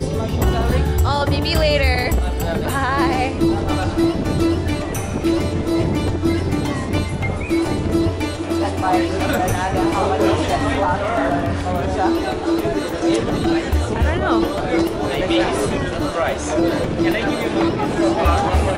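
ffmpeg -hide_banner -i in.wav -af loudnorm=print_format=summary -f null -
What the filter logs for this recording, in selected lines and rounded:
Input Integrated:    -19.2 LUFS
Input True Peak:      -3.9 dBTP
Input LRA:             1.3 LU
Input Threshold:     -29.2 LUFS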